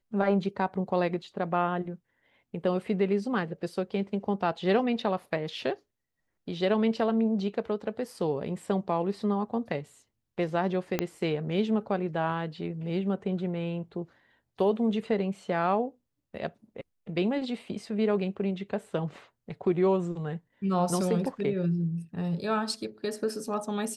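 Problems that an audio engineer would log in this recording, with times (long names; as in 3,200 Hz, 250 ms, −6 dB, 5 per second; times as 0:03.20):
0:10.99: click −12 dBFS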